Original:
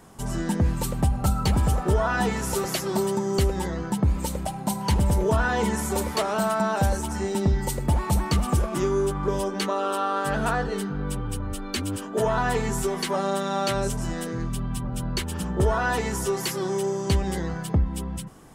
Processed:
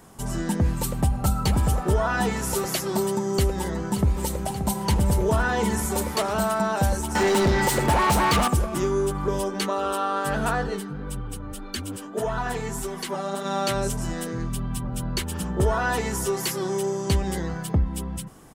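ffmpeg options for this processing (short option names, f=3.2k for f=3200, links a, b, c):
-filter_complex "[0:a]asplit=2[a][b];[b]afade=t=in:st=3:d=0.01,afade=t=out:st=4.13:d=0.01,aecho=0:1:580|1160|1740|2320|2900|3480|4060|4640|5220|5800|6380|6960:0.281838|0.225471|0.180377|0.144301|0.115441|0.0923528|0.0738822|0.0591058|0.0472846|0.0378277|0.0302622|0.0242097[c];[a][c]amix=inputs=2:normalize=0,asettb=1/sr,asplit=3[d][e][f];[d]atrim=end=7.154[g];[e]atrim=start=7.15:end=8.48,asetpts=PTS-STARTPTS,afade=t=in:d=0.004:c=qsin,afade=t=out:st=1.326:d=0.004:c=qsin,asplit=2[h][i];[i]highpass=f=720:p=1,volume=26dB,asoftclip=type=tanh:threshold=-12dB[j];[h][j]amix=inputs=2:normalize=0,lowpass=f=3.1k:p=1,volume=-6dB[k];[f]atrim=start=8.476[l];[g][k]acrossfade=d=0.004:c1=hsin:c2=qsin[m];[m][l]acrossfade=d=0.004:c1=qsin:c2=hsin,asplit=3[n][o][p];[n]afade=t=out:st=10.75:d=0.02[q];[o]flanger=delay=0.6:depth=6.3:regen=51:speed=1.7:shape=sinusoidal,afade=t=in:st=10.75:d=0.02,afade=t=out:st=13.44:d=0.02[r];[p]afade=t=in:st=13.44:d=0.02[s];[q][r][s]amix=inputs=3:normalize=0,highshelf=f=9.7k:g=5.5"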